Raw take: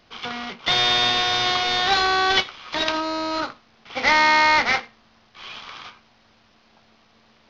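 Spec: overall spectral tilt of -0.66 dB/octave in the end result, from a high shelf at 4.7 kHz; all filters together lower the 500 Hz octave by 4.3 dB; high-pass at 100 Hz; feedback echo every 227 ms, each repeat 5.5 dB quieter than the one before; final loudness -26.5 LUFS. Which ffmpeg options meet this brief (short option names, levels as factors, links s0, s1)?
-af "highpass=100,equalizer=f=500:t=o:g=-6.5,highshelf=f=4700:g=6,aecho=1:1:227|454|681|908|1135|1362|1589:0.531|0.281|0.149|0.079|0.0419|0.0222|0.0118,volume=0.355"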